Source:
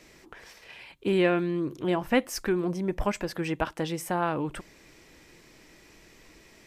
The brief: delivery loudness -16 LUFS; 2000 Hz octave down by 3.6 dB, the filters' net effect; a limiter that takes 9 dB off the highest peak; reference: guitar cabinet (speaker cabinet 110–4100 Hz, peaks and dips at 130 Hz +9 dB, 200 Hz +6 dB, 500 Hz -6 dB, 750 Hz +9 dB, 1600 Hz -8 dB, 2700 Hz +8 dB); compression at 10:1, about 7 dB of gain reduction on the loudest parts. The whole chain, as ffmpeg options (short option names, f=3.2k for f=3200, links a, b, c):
-af "equalizer=f=2k:t=o:g=-5.5,acompressor=threshold=-26dB:ratio=10,alimiter=level_in=2dB:limit=-24dB:level=0:latency=1,volume=-2dB,highpass=110,equalizer=f=130:t=q:w=4:g=9,equalizer=f=200:t=q:w=4:g=6,equalizer=f=500:t=q:w=4:g=-6,equalizer=f=750:t=q:w=4:g=9,equalizer=f=1.6k:t=q:w=4:g=-8,equalizer=f=2.7k:t=q:w=4:g=8,lowpass=f=4.1k:w=0.5412,lowpass=f=4.1k:w=1.3066,volume=17.5dB"